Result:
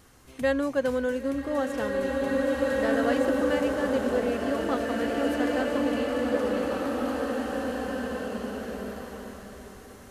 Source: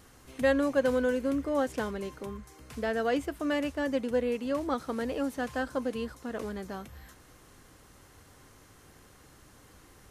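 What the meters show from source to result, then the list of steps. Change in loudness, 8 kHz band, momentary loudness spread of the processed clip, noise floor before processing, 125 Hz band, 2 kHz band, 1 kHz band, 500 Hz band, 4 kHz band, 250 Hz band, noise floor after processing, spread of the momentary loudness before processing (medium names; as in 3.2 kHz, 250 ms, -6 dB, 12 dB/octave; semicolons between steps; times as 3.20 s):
+3.5 dB, +4.5 dB, 12 LU, -57 dBFS, +4.0 dB, +5.0 dB, +5.0 dB, +5.0 dB, +5.0 dB, +5.0 dB, -47 dBFS, 15 LU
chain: swelling reverb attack 2350 ms, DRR -3 dB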